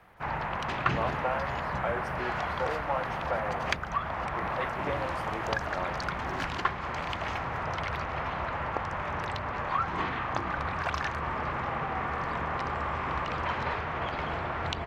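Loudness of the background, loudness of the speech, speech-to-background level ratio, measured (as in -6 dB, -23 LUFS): -32.0 LUFS, -37.0 LUFS, -5.0 dB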